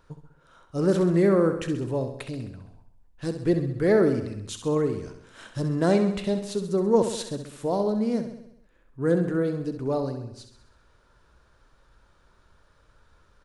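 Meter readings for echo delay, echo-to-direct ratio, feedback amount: 66 ms, −7.5 dB, 57%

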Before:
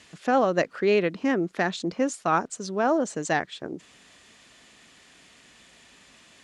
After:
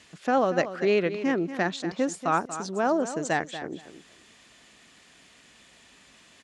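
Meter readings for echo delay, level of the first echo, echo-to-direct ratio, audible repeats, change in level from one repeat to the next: 236 ms, −12.0 dB, −12.0 dB, 2, −15.5 dB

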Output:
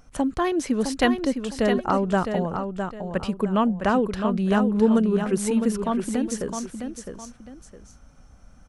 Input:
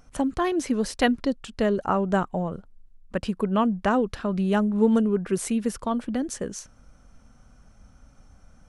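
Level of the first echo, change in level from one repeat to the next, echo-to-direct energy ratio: −7.0 dB, −10.0 dB, −6.5 dB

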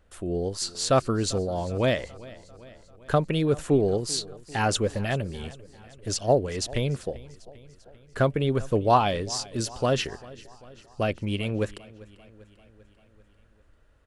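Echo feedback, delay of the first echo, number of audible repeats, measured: 59%, 394 ms, 4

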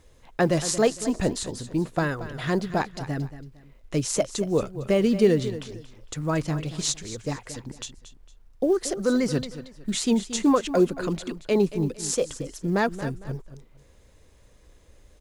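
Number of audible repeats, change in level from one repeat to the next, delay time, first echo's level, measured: 2, −10.5 dB, 228 ms, −13.5 dB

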